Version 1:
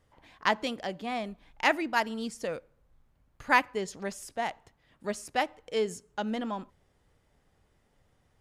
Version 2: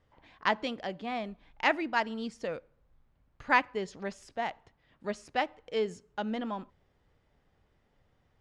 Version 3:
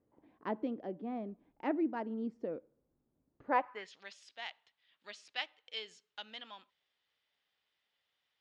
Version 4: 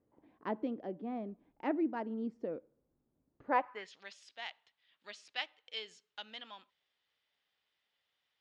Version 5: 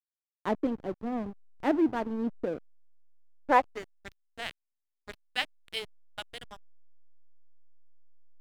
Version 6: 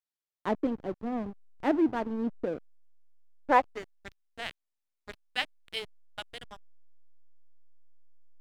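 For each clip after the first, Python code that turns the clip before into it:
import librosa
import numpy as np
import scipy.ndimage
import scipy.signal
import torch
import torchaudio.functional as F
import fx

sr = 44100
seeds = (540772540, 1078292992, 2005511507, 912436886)

y1 = scipy.signal.sosfilt(scipy.signal.butter(2, 4600.0, 'lowpass', fs=sr, output='sos'), x)
y1 = F.gain(torch.from_numpy(y1), -1.5).numpy()
y2 = fx.filter_sweep_bandpass(y1, sr, from_hz=310.0, to_hz=3500.0, start_s=3.44, end_s=3.95, q=2.0)
y2 = F.gain(torch.from_numpy(y2), 3.0).numpy()
y3 = y2
y4 = fx.backlash(y3, sr, play_db=-38.0)
y4 = F.gain(torch.from_numpy(y4), 8.5).numpy()
y5 = fx.high_shelf(y4, sr, hz=8700.0, db=-5.0)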